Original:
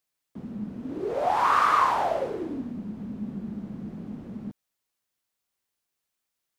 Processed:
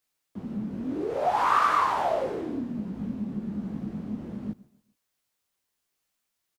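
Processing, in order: feedback delay 137 ms, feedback 40%, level -21.5 dB; in parallel at +1 dB: compression, threshold -32 dBFS, peak gain reduction 14 dB; on the sum: detune thickener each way 46 cents

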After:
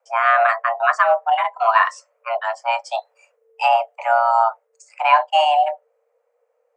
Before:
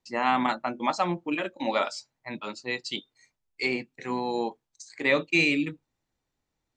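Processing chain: bass shelf 210 Hz +7.5 dB; frequency shift +450 Hz; ten-band graphic EQ 500 Hz +11 dB, 1 kHz +7 dB, 2 kHz +9 dB, 4 kHz -11 dB; gain riding within 3 dB 2 s; trim +1 dB

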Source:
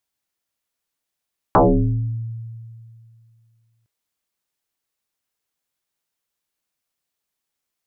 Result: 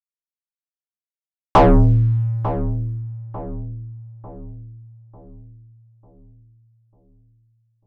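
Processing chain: waveshaping leveller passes 2; dynamic bell 910 Hz, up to +6 dB, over -28 dBFS, Q 0.91; expander -39 dBFS; bass shelf 110 Hz +9 dB; on a send: filtered feedback delay 896 ms, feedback 48%, low-pass 920 Hz, level -11 dB; on the sum: trim -3.5 dB

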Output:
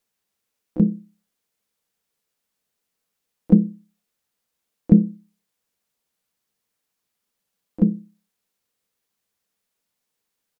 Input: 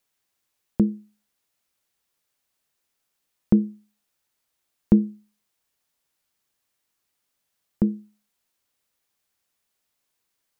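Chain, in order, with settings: harmony voices -3 st -3 dB, +7 st -11 dB; small resonant body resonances 200/460 Hz, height 7 dB, ringing for 40 ms; trim -4 dB

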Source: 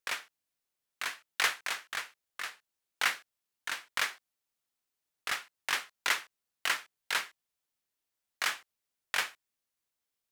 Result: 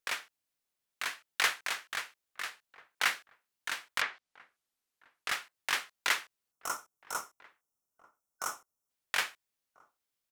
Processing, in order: 6.52–8.90 s: time-frequency box 1.5–5.2 kHz -19 dB; echo from a far wall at 230 m, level -22 dB; 4.00–5.29 s: low-pass that closes with the level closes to 2.7 kHz, closed at -31 dBFS

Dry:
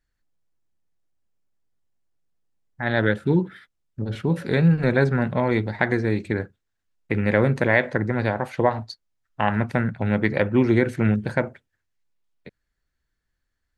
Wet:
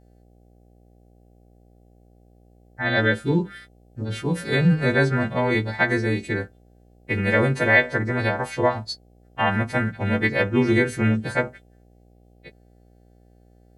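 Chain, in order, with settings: partials quantised in pitch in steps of 2 st; mains buzz 60 Hz, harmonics 13, -54 dBFS -5 dB/octave

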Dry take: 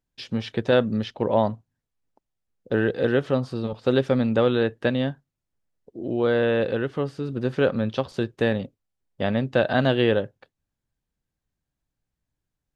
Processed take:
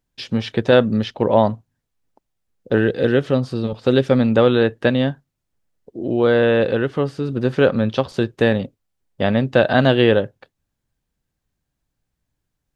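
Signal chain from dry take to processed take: 2.77–4.11 s: dynamic bell 960 Hz, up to -5 dB, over -37 dBFS, Q 0.97; trim +6 dB

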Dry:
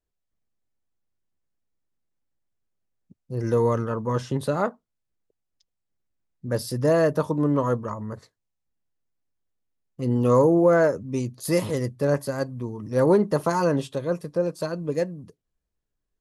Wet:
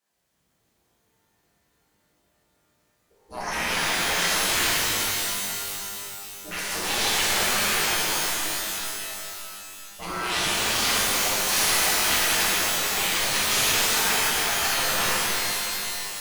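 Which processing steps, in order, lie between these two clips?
sine folder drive 14 dB, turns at -7.5 dBFS; spectral gate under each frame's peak -20 dB weak; pitch-shifted reverb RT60 3.2 s, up +12 st, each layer -2 dB, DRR -9.5 dB; trim -8.5 dB

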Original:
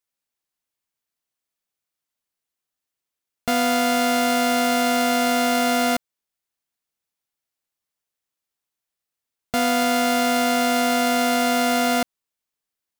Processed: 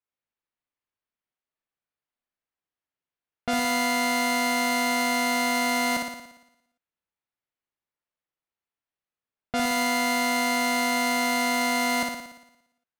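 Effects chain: level-controlled noise filter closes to 2.6 kHz, open at -16.5 dBFS; on a send: flutter echo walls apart 9.9 m, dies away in 0.85 s; on the sum: trim -4.5 dB

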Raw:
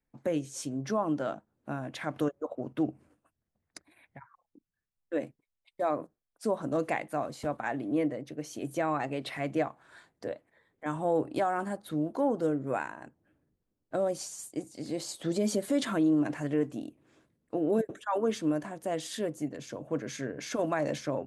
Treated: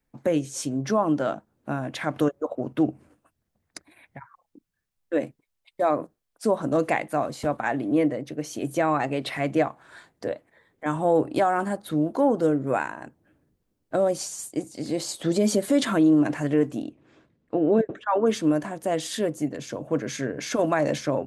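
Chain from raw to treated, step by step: 16.82–18.25 s: low-pass 5.9 kHz -> 2.5 kHz 12 dB/octave; trim +7 dB

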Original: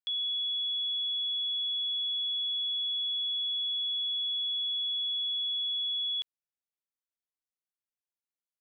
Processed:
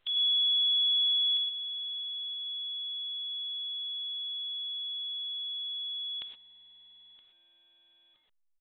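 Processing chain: spectral peaks clipped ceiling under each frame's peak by 16 dB; reverb removal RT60 1.3 s; peaking EQ 3.1 kHz +11 dB 0.69 oct, from 1.37 s -3 dB; peak limiter -27.5 dBFS, peak gain reduction 10.5 dB; feedback delay 970 ms, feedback 26%, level -19 dB; reverberation, pre-delay 3 ms, DRR 6 dB; A-law 64 kbps 8 kHz

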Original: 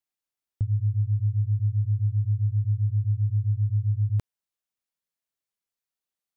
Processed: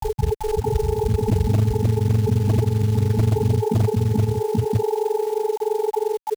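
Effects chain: tape start-up on the opening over 1.53 s; whistle 430 Hz -29 dBFS; tremolo 17 Hz, depth 73%; granulator 43 ms, grains 23 per s, spray 967 ms, pitch spread up and down by 0 st; peaking EQ 110 Hz +7.5 dB 0.55 oct; harmony voices +12 st -12 dB; companded quantiser 6-bit; high-pass 60 Hz 6 dB/octave; wavefolder -17.5 dBFS; level flattener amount 70%; trim +5.5 dB

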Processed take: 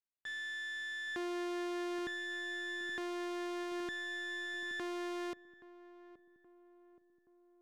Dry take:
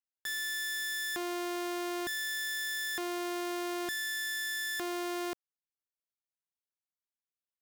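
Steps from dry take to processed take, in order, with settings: self-modulated delay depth 0.11 ms; steep low-pass 3.7 kHz 36 dB/octave; saturation -38.5 dBFS, distortion -12 dB; filtered feedback delay 824 ms, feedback 64%, low-pass 900 Hz, level -9 dB; upward expansion 1.5:1, over -56 dBFS; trim +3 dB

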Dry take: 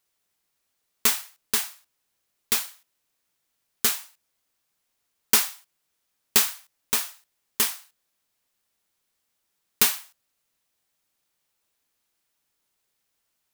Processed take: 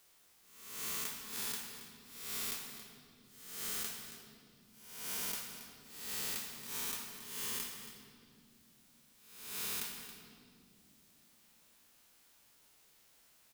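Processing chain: reverse spectral sustain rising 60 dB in 0.62 s; compression 12:1, threshold -32 dBFS, peak gain reduction 21 dB; delay 275 ms -16 dB; on a send at -5.5 dB: reverberation RT60 1.9 s, pre-delay 25 ms; on the sum: three bands compressed up and down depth 40%; trim -4.5 dB

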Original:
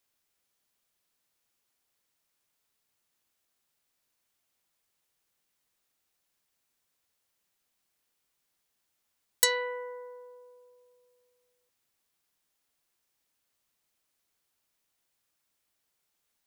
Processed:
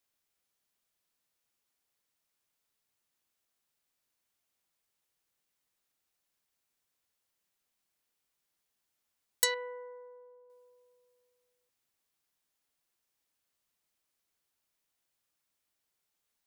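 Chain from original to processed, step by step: 9.54–10.50 s: tape spacing loss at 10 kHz 43 dB; trim -4 dB

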